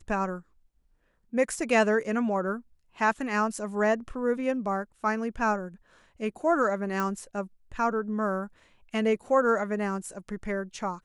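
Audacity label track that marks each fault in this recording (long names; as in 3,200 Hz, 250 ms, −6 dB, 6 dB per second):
7.000000	7.000000	click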